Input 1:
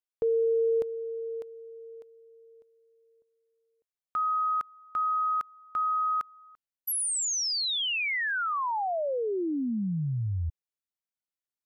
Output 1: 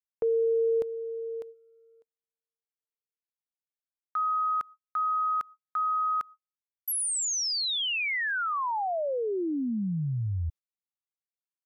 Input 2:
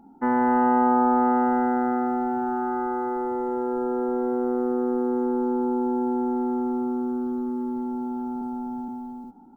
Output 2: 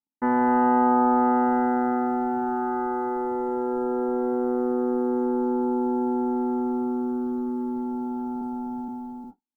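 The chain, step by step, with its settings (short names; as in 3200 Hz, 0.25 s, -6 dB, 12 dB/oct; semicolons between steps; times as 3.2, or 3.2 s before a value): gate -43 dBFS, range -51 dB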